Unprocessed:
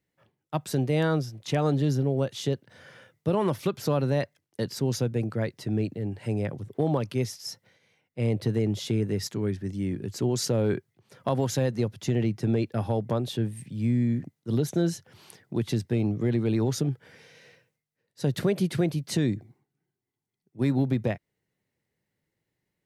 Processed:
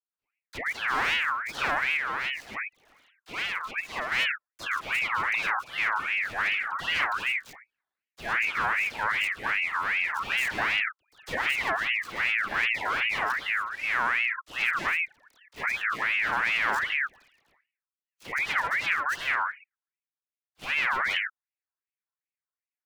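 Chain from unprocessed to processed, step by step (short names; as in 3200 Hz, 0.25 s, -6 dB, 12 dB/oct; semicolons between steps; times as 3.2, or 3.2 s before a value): median filter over 25 samples; low shelf 100 Hz -7.5 dB; sample leveller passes 5; dispersion lows, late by 0.126 s, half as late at 630 Hz; 1.97–4.12 flange 1.3 Hz, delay 0.4 ms, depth 2.8 ms, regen +75%; ring modulator with a swept carrier 1800 Hz, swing 35%, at 2.6 Hz; gain -6 dB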